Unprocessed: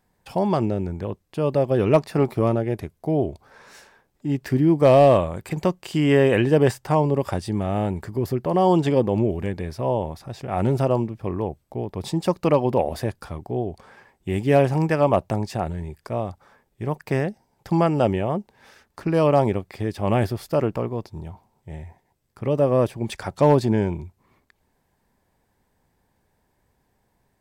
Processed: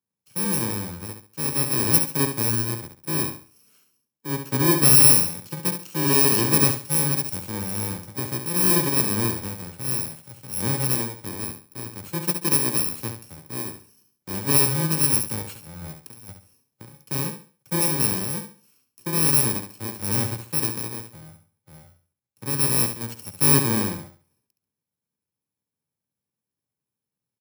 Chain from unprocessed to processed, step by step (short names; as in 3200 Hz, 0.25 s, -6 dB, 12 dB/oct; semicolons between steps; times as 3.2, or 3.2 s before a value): FFT order left unsorted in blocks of 64 samples; HPF 100 Hz 24 dB/oct; 15.42–16.99 negative-ratio compressor -34 dBFS, ratio -1; on a send: feedback echo 69 ms, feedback 33%, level -7 dB; on the sum: three-band expander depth 40%; gain -3.5 dB